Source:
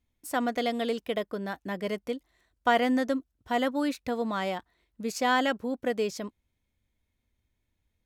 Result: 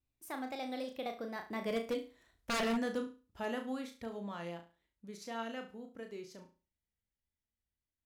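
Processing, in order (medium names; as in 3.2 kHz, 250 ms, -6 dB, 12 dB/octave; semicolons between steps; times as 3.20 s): Doppler pass-by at 2.12 s, 34 m/s, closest 17 m; in parallel at -0.5 dB: compression, threshold -53 dBFS, peak gain reduction 29 dB; on the sum: vibrato 4 Hz 50 cents; flutter echo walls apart 6 m, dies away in 0.33 s; wavefolder -24 dBFS; trim -3.5 dB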